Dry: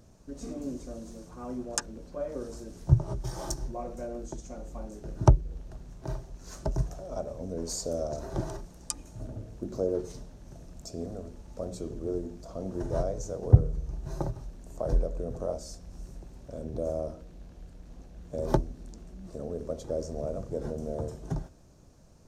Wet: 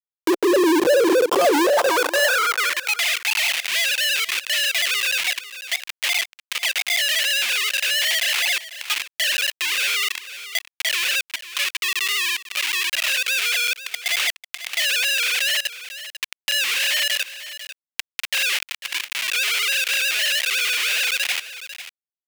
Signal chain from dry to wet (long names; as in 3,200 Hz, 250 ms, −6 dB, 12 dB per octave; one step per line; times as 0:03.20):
three sine waves on the formant tracks
gain on a spectral selection 0:11.20–0:13.08, 400–1,000 Hz −20 dB
noise gate with hold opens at −50 dBFS
noise reduction from a noise print of the clip's start 7 dB
tilt shelving filter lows +8.5 dB
comb filter 5.7 ms, depth 58%
downward compressor 2.5 to 1, threshold −37 dBFS, peak gain reduction 17 dB
comparator with hysteresis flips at −48 dBFS
high-pass filter sweep 410 Hz → 2,500 Hz, 0:01.46–0:02.94
single-tap delay 496 ms −19 dB
boost into a limiter +35.5 dB
one half of a high-frequency compander encoder only
level −9.5 dB